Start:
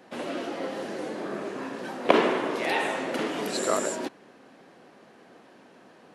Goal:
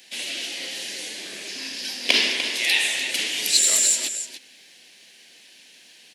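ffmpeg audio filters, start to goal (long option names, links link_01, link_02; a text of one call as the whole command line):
ffmpeg -i in.wav -filter_complex "[0:a]asettb=1/sr,asplit=3[link_01][link_02][link_03];[link_01]atrim=end=1.484[link_04];[link_02]atrim=start=1.48:end=2.36,asetpts=PTS-STARTPTS,afade=type=in:duration=0.004:curve=qsin,afade=type=out:start_time=0.876:duration=0.004:curve=qsin,equalizer=frequency=250:width_type=o:width=0.33:gain=7,equalizer=frequency=5000:width_type=o:width=0.33:gain=10,equalizer=frequency=8000:width_type=o:width=0.33:gain=-4[link_05];[link_03]atrim=start=2.356[link_06];[link_04][link_05]acrossfade=duration=0.004:curve1=hsin:curve2=qsin[link_07];[link_07][link_06]acrossfade=duration=0.004:curve1=qsin:curve2=hsin,aecho=1:1:297:0.282,aexciter=amount=12.1:drive=8.9:freq=2000,volume=-12dB" out.wav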